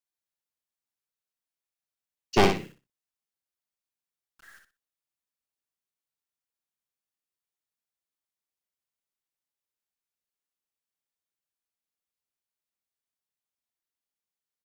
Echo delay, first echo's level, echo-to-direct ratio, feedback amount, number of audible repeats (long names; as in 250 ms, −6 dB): 61 ms, −6.0 dB, −6.0 dB, 22%, 3